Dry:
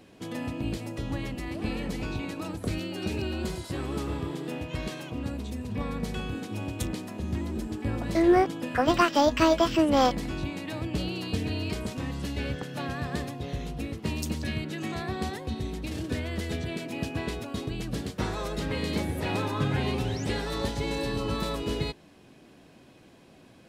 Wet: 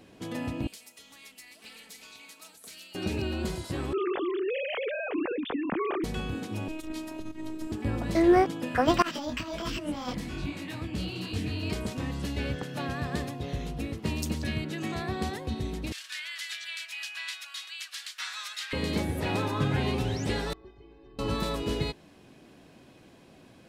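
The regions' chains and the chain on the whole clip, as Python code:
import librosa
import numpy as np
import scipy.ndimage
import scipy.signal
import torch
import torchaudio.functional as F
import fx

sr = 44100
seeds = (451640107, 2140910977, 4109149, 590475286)

y = fx.chain(x, sr, fx.differentiator(),
    fx.comb(ms=4.5, depth=0.54),
    fx.doppler_dist(depth_ms=0.19), at=(0.67, 2.95))
y = fx.chain(y, sr, fx.sine_speech(),
    fx.env_flatten(amount_pct=50), at=(3.93, 6.04))
y = fx.chain(y, sr, fx.over_compress(threshold_db=-33.0, ratio=-0.5),
    fx.robotise(hz=315.0), at=(6.68, 7.72))
y = fx.chain(y, sr, fx.peak_eq(hz=600.0, db=-5.5, octaves=1.4),
    fx.over_compress(threshold_db=-27.0, ratio=-0.5),
    fx.detune_double(cents=45), at=(9.02, 11.63))
y = fx.chain(y, sr, fx.highpass(hz=1400.0, slope=24),
    fx.peak_eq(hz=4000.0, db=5.5, octaves=2.4), at=(15.92, 18.73))
y = fx.chain(y, sr, fx.spacing_loss(db_at_10k=45),
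    fx.stiff_resonator(f0_hz=370.0, decay_s=0.21, stiffness=0.008), at=(20.53, 21.19))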